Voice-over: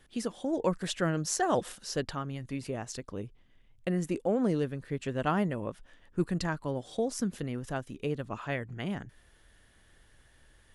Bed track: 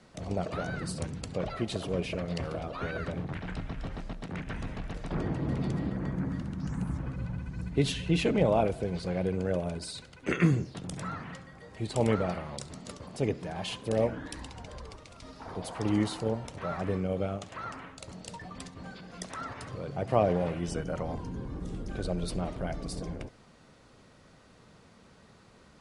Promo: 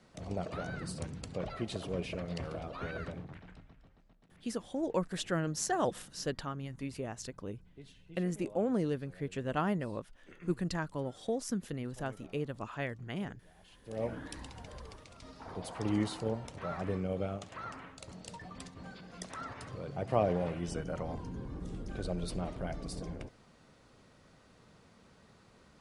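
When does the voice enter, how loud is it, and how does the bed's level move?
4.30 s, −3.5 dB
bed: 0:03.02 −5 dB
0:03.95 −26.5 dB
0:13.66 −26.5 dB
0:14.12 −4 dB

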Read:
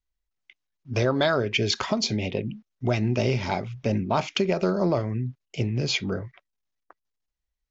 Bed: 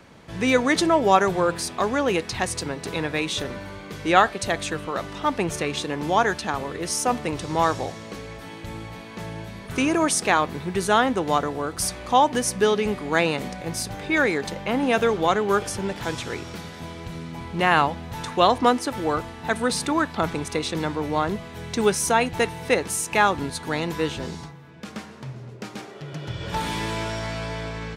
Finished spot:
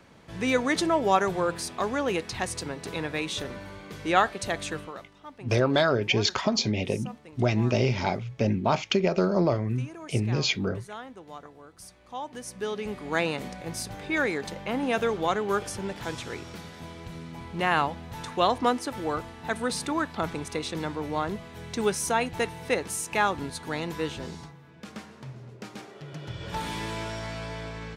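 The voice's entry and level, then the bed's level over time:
4.55 s, 0.0 dB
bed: 0:04.79 −5 dB
0:05.13 −21.5 dB
0:11.99 −21.5 dB
0:13.14 −5.5 dB

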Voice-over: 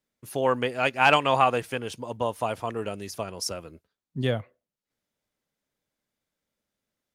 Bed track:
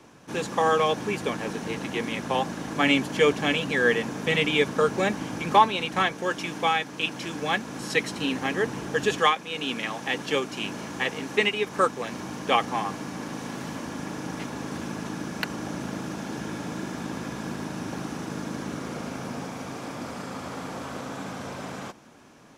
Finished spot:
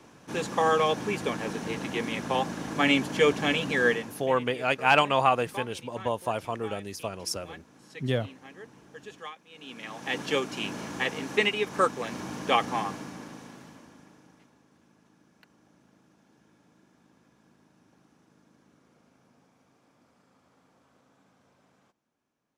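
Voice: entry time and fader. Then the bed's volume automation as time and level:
3.85 s, −1.5 dB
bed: 0:03.87 −1.5 dB
0:04.38 −20.5 dB
0:09.44 −20.5 dB
0:10.17 −1.5 dB
0:12.81 −1.5 dB
0:14.65 −29.5 dB

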